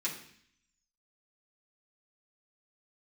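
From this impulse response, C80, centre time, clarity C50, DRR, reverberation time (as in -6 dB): 11.0 dB, 23 ms, 8.0 dB, -6.5 dB, 0.60 s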